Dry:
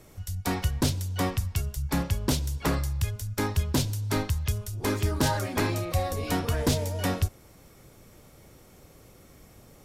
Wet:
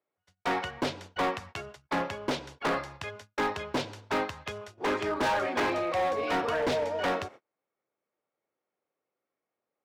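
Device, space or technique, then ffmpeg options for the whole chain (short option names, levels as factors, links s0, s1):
walkie-talkie: -af "highpass=460,lowpass=2200,asoftclip=type=hard:threshold=0.0266,agate=range=0.0178:threshold=0.00224:ratio=16:detection=peak,volume=2.37"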